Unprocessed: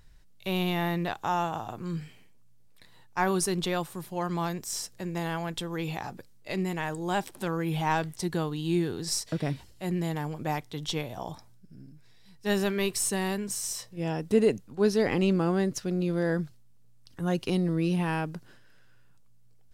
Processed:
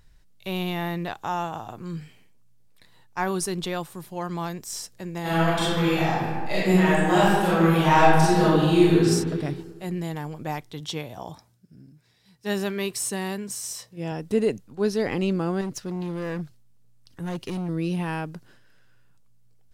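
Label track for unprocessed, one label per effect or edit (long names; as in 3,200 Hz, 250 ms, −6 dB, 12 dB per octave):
5.210000	9.010000	thrown reverb, RT60 1.7 s, DRR −11 dB
10.800000	14.120000	high-pass filter 62 Hz
15.610000	17.690000	hard clipping −26.5 dBFS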